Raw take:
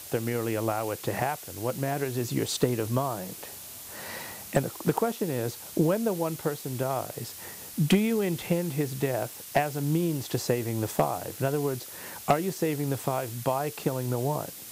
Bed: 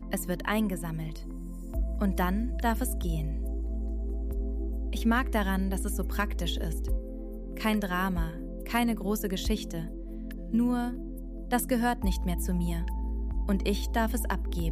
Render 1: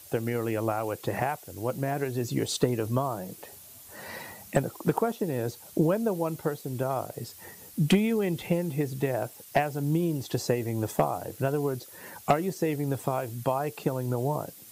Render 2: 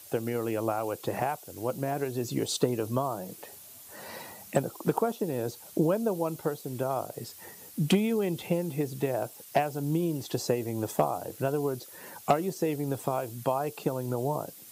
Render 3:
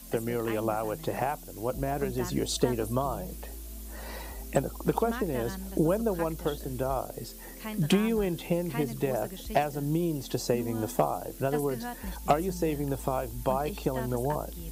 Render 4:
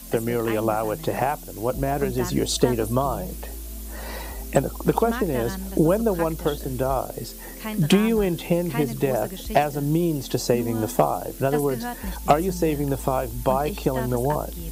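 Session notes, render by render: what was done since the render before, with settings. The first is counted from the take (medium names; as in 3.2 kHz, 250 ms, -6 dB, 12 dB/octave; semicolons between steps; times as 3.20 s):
noise reduction 9 dB, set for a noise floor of -43 dBFS
high-pass 160 Hz 6 dB/octave; dynamic bell 1.9 kHz, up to -6 dB, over -51 dBFS, Q 2.2
add bed -10.5 dB
trim +6.5 dB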